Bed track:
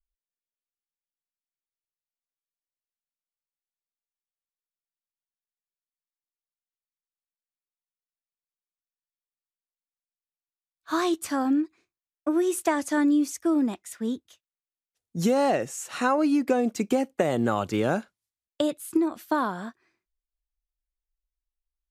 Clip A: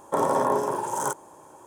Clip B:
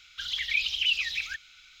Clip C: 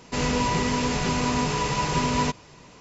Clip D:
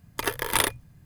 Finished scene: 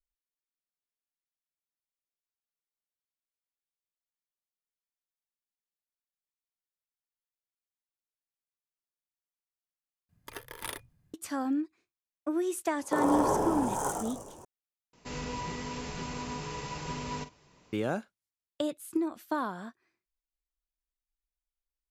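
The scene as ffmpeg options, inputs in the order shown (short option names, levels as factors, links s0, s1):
-filter_complex "[0:a]volume=0.473[s0];[1:a]asplit=9[s1][s2][s3][s4][s5][s6][s7][s8][s9];[s2]adelay=104,afreqshift=-100,volume=0.631[s10];[s3]adelay=208,afreqshift=-200,volume=0.372[s11];[s4]adelay=312,afreqshift=-300,volume=0.219[s12];[s5]adelay=416,afreqshift=-400,volume=0.13[s13];[s6]adelay=520,afreqshift=-500,volume=0.0767[s14];[s7]adelay=624,afreqshift=-600,volume=0.0452[s15];[s8]adelay=728,afreqshift=-700,volume=0.0266[s16];[s9]adelay=832,afreqshift=-800,volume=0.0157[s17];[s1][s10][s11][s12][s13][s14][s15][s16][s17]amix=inputs=9:normalize=0[s18];[3:a]asplit=2[s19][s20];[s20]adelay=47,volume=0.266[s21];[s19][s21]amix=inputs=2:normalize=0[s22];[s0]asplit=3[s23][s24][s25];[s23]atrim=end=10.094[s26];[4:a]atrim=end=1.05,asetpts=PTS-STARTPTS,volume=0.158[s27];[s24]atrim=start=11.136:end=14.934[s28];[s22]atrim=end=2.8,asetpts=PTS-STARTPTS,volume=0.211[s29];[s25]atrim=start=17.726[s30];[s18]atrim=end=1.66,asetpts=PTS-STARTPTS,volume=0.501,afade=t=in:d=0.004:c=hsin,afade=t=out:st=1.656:d=0.004:c=hsin,adelay=12790[s31];[s26][s27]acrossfade=d=0.004:c1=hsin:c2=hsin[s32];[s32][s28]acrossfade=d=0.004:c1=hsin:c2=hsin[s33];[s33][s29]acrossfade=d=0.004:c1=hsin:c2=hsin[s34];[s34][s30]acrossfade=d=0.004:c1=hsin:c2=hsin[s35];[s35][s31]amix=inputs=2:normalize=0"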